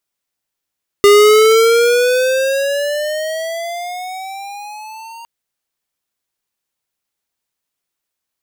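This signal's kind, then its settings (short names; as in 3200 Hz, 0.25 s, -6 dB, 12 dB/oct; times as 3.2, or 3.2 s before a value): gliding synth tone square, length 4.21 s, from 404 Hz, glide +14.5 st, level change -27.5 dB, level -6 dB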